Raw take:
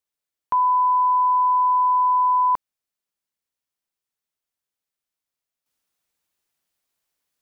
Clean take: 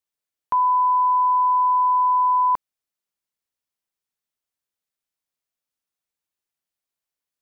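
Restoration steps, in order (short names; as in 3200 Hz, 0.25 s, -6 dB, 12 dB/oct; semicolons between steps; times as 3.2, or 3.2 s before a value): gain 0 dB, from 5.66 s -8.5 dB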